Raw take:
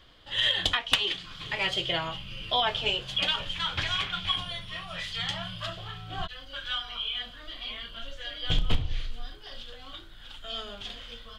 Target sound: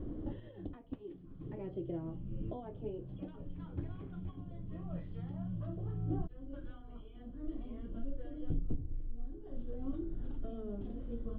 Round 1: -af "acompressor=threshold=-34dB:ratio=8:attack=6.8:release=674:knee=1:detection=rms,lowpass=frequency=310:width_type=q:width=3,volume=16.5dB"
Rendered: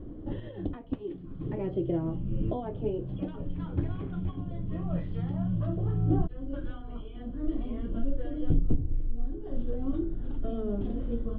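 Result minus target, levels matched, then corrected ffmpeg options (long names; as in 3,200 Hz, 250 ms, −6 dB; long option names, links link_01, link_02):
downward compressor: peak gain reduction −10.5 dB
-af "acompressor=threshold=-46dB:ratio=8:attack=6.8:release=674:knee=1:detection=rms,lowpass=frequency=310:width_type=q:width=3,volume=16.5dB"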